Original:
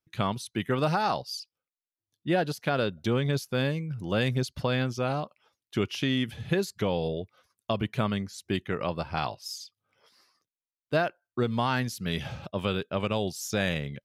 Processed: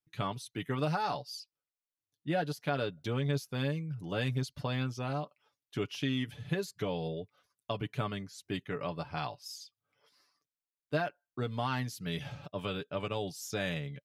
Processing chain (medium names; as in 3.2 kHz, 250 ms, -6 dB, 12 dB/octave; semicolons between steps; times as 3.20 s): comb 6.9 ms, depth 55%; trim -7.5 dB